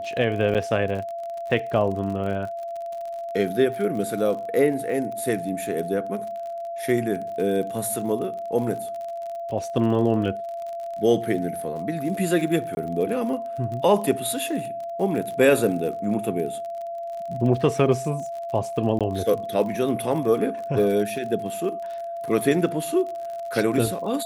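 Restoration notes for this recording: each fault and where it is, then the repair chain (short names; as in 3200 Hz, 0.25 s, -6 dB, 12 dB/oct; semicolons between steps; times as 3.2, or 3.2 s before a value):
crackle 46/s -32 dBFS
tone 680 Hz -29 dBFS
0.54–0.55 gap 7.6 ms
12.75–12.77 gap 20 ms
18.99–19.01 gap 17 ms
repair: de-click; notch 680 Hz, Q 30; interpolate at 0.54, 7.6 ms; interpolate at 12.75, 20 ms; interpolate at 18.99, 17 ms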